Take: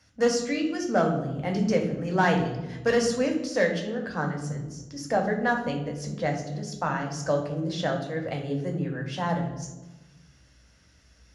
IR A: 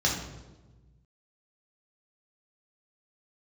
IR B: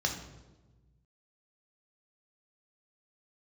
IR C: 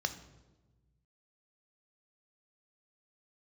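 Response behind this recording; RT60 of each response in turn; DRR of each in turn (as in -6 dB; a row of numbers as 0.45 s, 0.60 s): B; 1.2 s, 1.2 s, 1.2 s; -3.0 dB, 1.5 dB, 8.0 dB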